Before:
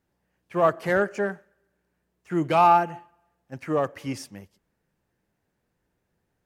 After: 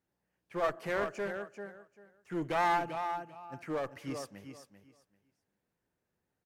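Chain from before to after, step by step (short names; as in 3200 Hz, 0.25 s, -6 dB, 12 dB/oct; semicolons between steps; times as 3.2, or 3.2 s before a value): low shelf 61 Hz -9.5 dB; feedback echo 0.392 s, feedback 19%, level -9.5 dB; one-sided clip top -25 dBFS; gain -8 dB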